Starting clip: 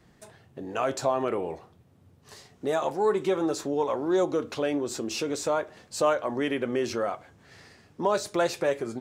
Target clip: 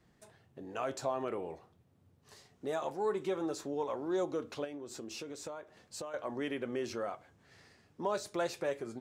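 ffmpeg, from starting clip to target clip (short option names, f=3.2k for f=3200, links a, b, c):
-filter_complex "[0:a]asettb=1/sr,asplit=3[a][b][c];[a]atrim=end=4.644[d];[b]atrim=start=4.64:end=6.14,asetpts=PTS-STARTPTS,afade=t=in:d=0.004:c=qsin,afade=t=out:st=1.496:d=0.004:c=qsin,acompressor=threshold=-31dB:ratio=12[e];[c]atrim=start=6.136[f];[d][e]acrossfade=d=0.004:c1=hsin:c2=qsin[g];[g][f]acrossfade=d=0.004:c1=qsin:c2=hsin,volume=-9dB"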